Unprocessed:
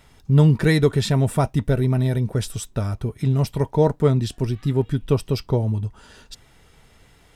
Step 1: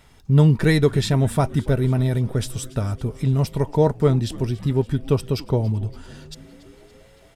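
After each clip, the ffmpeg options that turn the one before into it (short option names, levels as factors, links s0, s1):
-filter_complex "[0:a]asplit=7[s0][s1][s2][s3][s4][s5][s6];[s1]adelay=283,afreqshift=-130,volume=0.112[s7];[s2]adelay=566,afreqshift=-260,volume=0.0716[s8];[s3]adelay=849,afreqshift=-390,volume=0.0457[s9];[s4]adelay=1132,afreqshift=-520,volume=0.0295[s10];[s5]adelay=1415,afreqshift=-650,volume=0.0188[s11];[s6]adelay=1698,afreqshift=-780,volume=0.012[s12];[s0][s7][s8][s9][s10][s11][s12]amix=inputs=7:normalize=0"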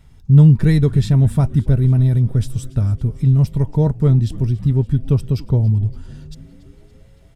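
-af "bass=f=250:g=15,treble=f=4000:g=1,volume=0.473"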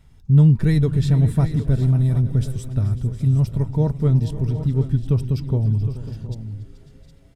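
-af "aecho=1:1:430|546|712|762:0.158|0.133|0.126|0.237,volume=0.631"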